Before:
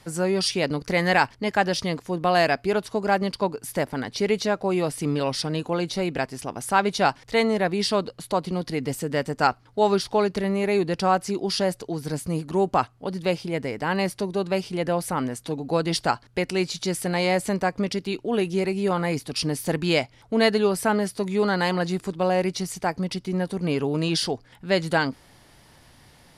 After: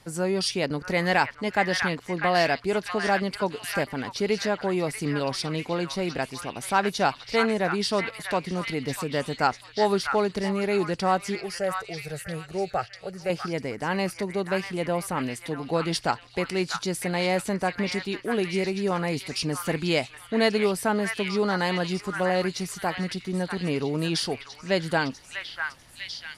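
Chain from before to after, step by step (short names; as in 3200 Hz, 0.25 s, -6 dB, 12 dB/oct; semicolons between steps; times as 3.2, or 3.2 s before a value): 11.35–13.3 fixed phaser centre 1000 Hz, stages 6; delay with a stepping band-pass 0.646 s, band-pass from 1600 Hz, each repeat 0.7 oct, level -1.5 dB; gain -2.5 dB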